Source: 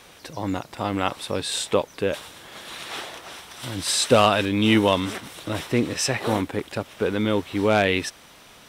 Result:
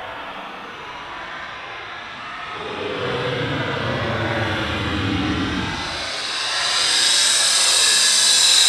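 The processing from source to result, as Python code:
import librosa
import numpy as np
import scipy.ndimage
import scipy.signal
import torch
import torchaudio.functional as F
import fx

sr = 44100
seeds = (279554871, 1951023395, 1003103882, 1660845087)

p1 = fx.env_lowpass(x, sr, base_hz=1900.0, full_db=-19.0)
p2 = fx.peak_eq(p1, sr, hz=1400.0, db=6.5, octaves=2.3)
p3 = p2 + fx.echo_feedback(p2, sr, ms=794, feedback_pct=39, wet_db=-6.0, dry=0)
p4 = fx.paulstretch(p3, sr, seeds[0], factor=15.0, window_s=0.05, from_s=3.43)
y = p4 * librosa.db_to_amplitude(5.5)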